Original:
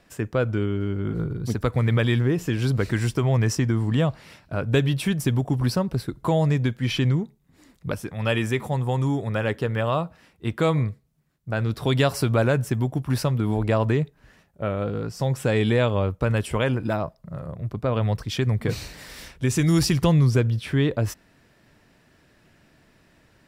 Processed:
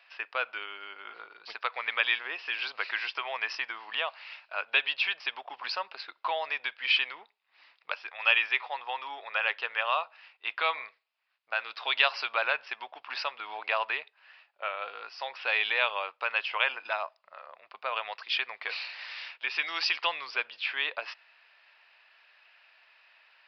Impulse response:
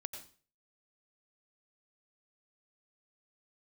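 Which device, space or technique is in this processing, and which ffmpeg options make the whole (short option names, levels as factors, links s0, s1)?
musical greeting card: -af "aresample=11025,aresample=44100,highpass=f=810:w=0.5412,highpass=f=810:w=1.3066,equalizer=f=2600:t=o:w=0.4:g=9.5"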